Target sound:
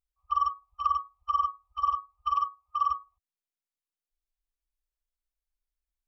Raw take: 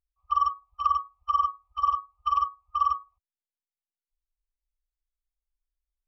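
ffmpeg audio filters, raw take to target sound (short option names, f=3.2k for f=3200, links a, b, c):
-filter_complex "[0:a]asettb=1/sr,asplit=3[a][b][c];[a]atrim=end=2.354[d];[b]atrim=start=2.35:end=2.9,asetpts=PTS-STARTPTS,afade=t=in:d=0.004:c=qsin,afade=t=out:st=0.546:d=0.004:c=qsin,highpass=f=140:p=1[e];[c]atrim=start=2.896[f];[d][e]acrossfade=d=0.004:c1=hsin:c2=qsin[g];[g][f]acrossfade=d=0.004:c1=qsin:c2=hsin,volume=-2.5dB"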